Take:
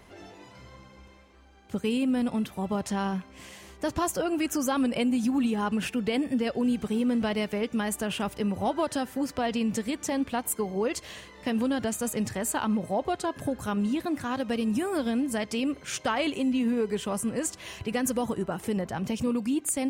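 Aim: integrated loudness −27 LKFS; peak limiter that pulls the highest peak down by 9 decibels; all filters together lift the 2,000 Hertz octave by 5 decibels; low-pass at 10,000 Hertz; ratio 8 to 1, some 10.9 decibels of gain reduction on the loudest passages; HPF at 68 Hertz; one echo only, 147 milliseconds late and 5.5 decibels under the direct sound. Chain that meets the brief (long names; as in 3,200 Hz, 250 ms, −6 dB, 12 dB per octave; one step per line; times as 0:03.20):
high-pass filter 68 Hz
low-pass filter 10,000 Hz
parametric band 2,000 Hz +6.5 dB
downward compressor 8 to 1, threshold −34 dBFS
brickwall limiter −31.5 dBFS
single-tap delay 147 ms −5.5 dB
level +12 dB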